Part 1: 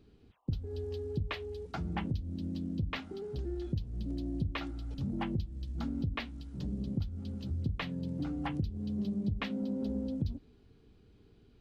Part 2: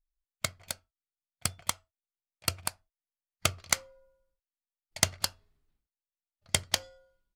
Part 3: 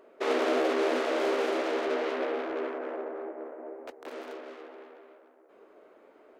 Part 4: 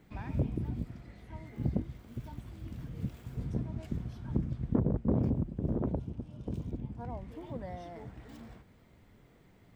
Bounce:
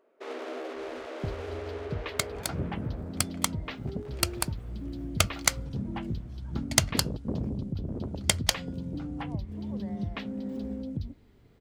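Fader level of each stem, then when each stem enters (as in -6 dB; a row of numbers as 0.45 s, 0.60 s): -0.5 dB, +2.5 dB, -11.0 dB, -4.0 dB; 0.75 s, 1.75 s, 0.00 s, 2.20 s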